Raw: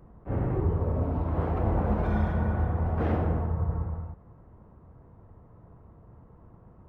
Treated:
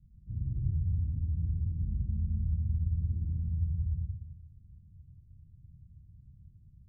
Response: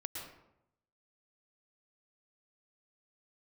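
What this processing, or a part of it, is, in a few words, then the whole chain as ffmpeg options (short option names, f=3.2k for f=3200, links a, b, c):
club heard from the street: -filter_complex "[0:a]alimiter=limit=-20dB:level=0:latency=1:release=136,lowpass=f=160:w=0.5412,lowpass=f=160:w=1.3066[a];[1:a]atrim=start_sample=2205[b];[a][b]afir=irnorm=-1:irlink=0,volume=-1.5dB"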